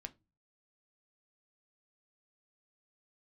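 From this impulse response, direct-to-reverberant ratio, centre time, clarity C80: 8.0 dB, 4 ms, 30.5 dB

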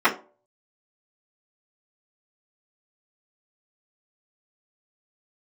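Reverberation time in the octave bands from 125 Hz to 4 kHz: 0.35, 0.35, 0.45, 0.35, 0.25, 0.20 seconds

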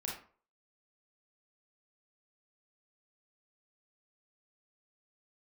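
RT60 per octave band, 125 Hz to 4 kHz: 0.40, 0.40, 0.45, 0.45, 0.35, 0.25 seconds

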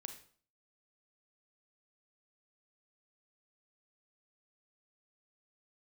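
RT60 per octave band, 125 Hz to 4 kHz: 0.55, 0.55, 0.50, 0.50, 0.40, 0.40 seconds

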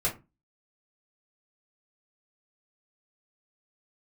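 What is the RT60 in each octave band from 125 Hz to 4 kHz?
0.40, 0.35, 0.30, 0.25, 0.20, 0.15 seconds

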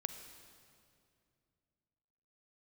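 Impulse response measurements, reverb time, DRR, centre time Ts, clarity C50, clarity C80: 2.4 s, 8.5 dB, 26 ms, 8.5 dB, 9.5 dB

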